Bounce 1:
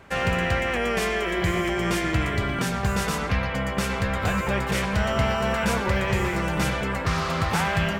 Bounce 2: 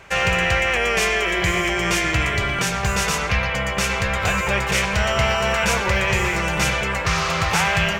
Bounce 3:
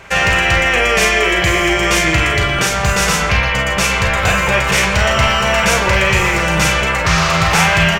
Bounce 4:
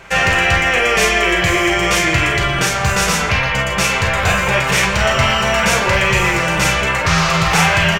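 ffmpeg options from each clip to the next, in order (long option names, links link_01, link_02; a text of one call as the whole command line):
ffmpeg -i in.wav -af "equalizer=frequency=100:width_type=o:width=0.67:gain=-3,equalizer=frequency=250:width_type=o:width=0.67:gain=-11,equalizer=frequency=2500:width_type=o:width=0.67:gain=6,equalizer=frequency=6300:width_type=o:width=0.67:gain=7,volume=4dB" out.wav
ffmpeg -i in.wav -filter_complex "[0:a]apsyclip=12dB,asplit=2[link_01][link_02];[link_02]aecho=0:1:37|49:0.422|0.376[link_03];[link_01][link_03]amix=inputs=2:normalize=0,volume=-6dB" out.wav
ffmpeg -i in.wav -filter_complex "[0:a]flanger=delay=5.7:depth=4.7:regen=-54:speed=0.81:shape=sinusoidal,asplit=2[link_01][link_02];[link_02]adelay=23,volume=-13dB[link_03];[link_01][link_03]amix=inputs=2:normalize=0,volume=3dB" out.wav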